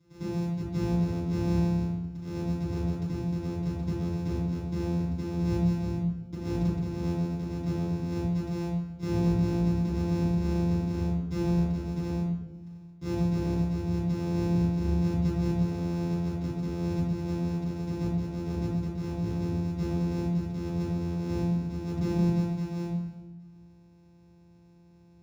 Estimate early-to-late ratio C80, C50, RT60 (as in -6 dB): 3.5 dB, -0.5 dB, 1.3 s